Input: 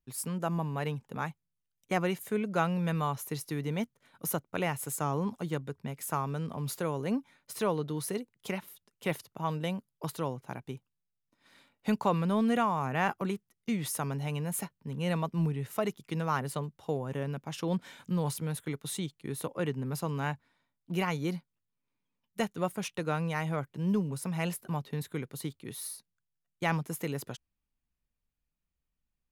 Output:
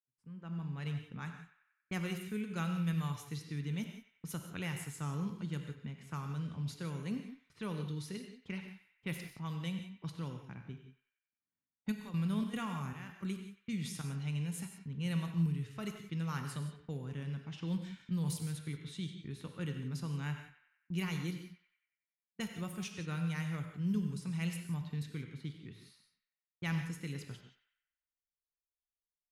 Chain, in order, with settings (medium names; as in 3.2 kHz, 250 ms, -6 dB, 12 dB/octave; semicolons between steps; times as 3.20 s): fade-in on the opening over 0.92 s; gate -51 dBFS, range -24 dB; level-controlled noise filter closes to 1 kHz, open at -27 dBFS; amplifier tone stack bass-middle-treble 6-0-2; 11.91–14.03 s: trance gate "..xxx.xxxx." 152 bpm -12 dB; band-passed feedback delay 93 ms, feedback 56%, band-pass 1.8 kHz, level -11.5 dB; gated-style reverb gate 200 ms flat, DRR 5.5 dB; trim +11.5 dB